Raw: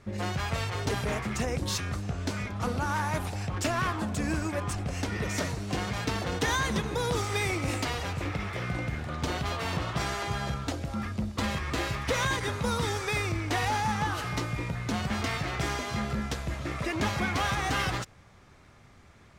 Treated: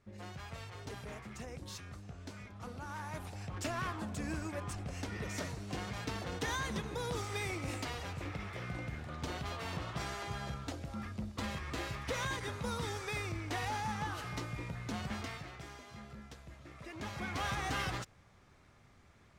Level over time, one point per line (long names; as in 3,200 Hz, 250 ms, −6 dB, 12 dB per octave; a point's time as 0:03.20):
0:02.74 −15.5 dB
0:03.64 −9 dB
0:15.12 −9 dB
0:15.66 −19 dB
0:16.73 −19 dB
0:17.48 −7.5 dB